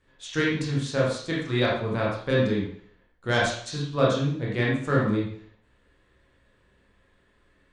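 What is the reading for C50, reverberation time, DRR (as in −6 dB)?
1.0 dB, 0.55 s, −5.5 dB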